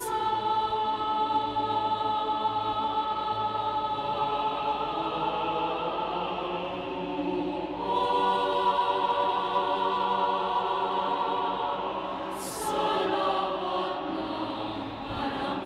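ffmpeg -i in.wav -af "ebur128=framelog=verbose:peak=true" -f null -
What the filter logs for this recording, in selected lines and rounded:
Integrated loudness:
  I:         -28.5 LUFS
  Threshold: -38.5 LUFS
Loudness range:
  LRA:         3.5 LU
  Threshold: -48.4 LUFS
  LRA low:   -30.0 LUFS
  LRA high:  -26.5 LUFS
True peak:
  Peak:      -15.4 dBFS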